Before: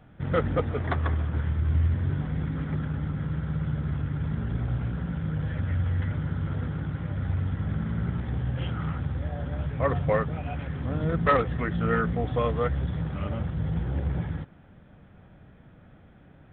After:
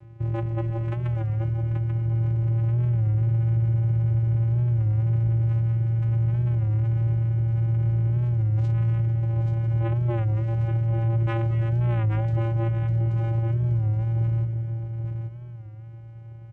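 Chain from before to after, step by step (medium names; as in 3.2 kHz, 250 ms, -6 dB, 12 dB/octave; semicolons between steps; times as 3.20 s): in parallel at +2 dB: compressor with a negative ratio -32 dBFS; on the sum: band-stop 2.5 kHz, Q 23; vocoder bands 4, square 114 Hz; saturation -17.5 dBFS, distortion -22 dB; delay 832 ms -5.5 dB; on a send at -10 dB: reverberation RT60 0.90 s, pre-delay 189 ms; on the sum: warped record 33 1/3 rpm, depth 100 cents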